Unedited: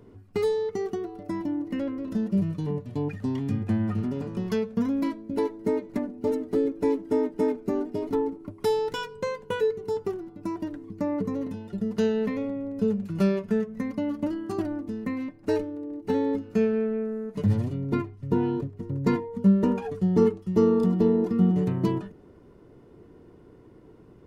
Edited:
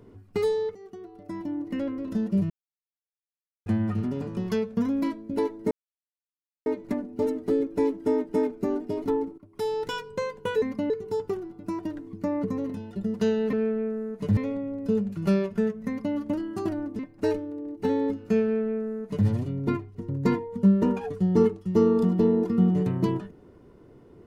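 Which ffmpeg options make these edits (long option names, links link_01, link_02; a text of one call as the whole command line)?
ffmpeg -i in.wav -filter_complex "[0:a]asplit=12[link_01][link_02][link_03][link_04][link_05][link_06][link_07][link_08][link_09][link_10][link_11][link_12];[link_01]atrim=end=0.75,asetpts=PTS-STARTPTS,afade=type=out:start_time=0.746:duration=0.004:curve=hsin:silence=0.0944061[link_13];[link_02]atrim=start=0.75:end=2.5,asetpts=PTS-STARTPTS,afade=type=in:duration=1.07:silence=0.0944061,afade=type=out:start_time=1.746:duration=0.004:curve=hsin[link_14];[link_03]atrim=start=2.5:end=3.66,asetpts=PTS-STARTPTS,volume=0[link_15];[link_04]atrim=start=3.66:end=5.71,asetpts=PTS-STARTPTS,afade=type=in:duration=0.004:curve=hsin,afade=type=out:start_time=2.046:duration=0.004:curve=hsin,apad=pad_dur=0.95[link_16];[link_05]atrim=start=5.71:end=8.43,asetpts=PTS-STARTPTS,afade=type=in:duration=0.004:curve=hsin,afade=type=out:start_time=2.716:duration=0.004:curve=hsin:silence=0.11885[link_17];[link_06]atrim=start=8.43:end=9.672,asetpts=PTS-STARTPTS,afade=type=in:duration=0.51:silence=0.11885[link_18];[link_07]atrim=start=13.808:end=14.092[link_19];[link_08]atrim=start=9.668:end=12.302[link_20];[link_09]atrim=start=16.678:end=17.522[link_21];[link_10]atrim=start=12.298:end=14.922[link_22];[link_11]atrim=start=15.238:end=18.202[link_23];[link_12]atrim=start=18.758[link_24];[link_13][link_14][link_15][link_16][link_17][link_18]concat=n=6:v=0:a=1[link_25];[link_25][link_19]acrossfade=duration=0.004:curve1=hsin:curve2=hsin[link_26];[link_26][link_20]acrossfade=duration=0.004:curve1=hsin:curve2=hsin[link_27];[link_27][link_21]acrossfade=duration=0.004:curve1=hsin:curve2=hsin[link_28];[link_28][link_22]acrossfade=duration=0.004:curve1=hsin:curve2=hsin[link_29];[link_29][link_23]acrossfade=duration=0.004:curve1=hsin:curve2=hsin[link_30];[link_30][link_24]acrossfade=duration=0.004:curve1=hsin:curve2=hsin" out.wav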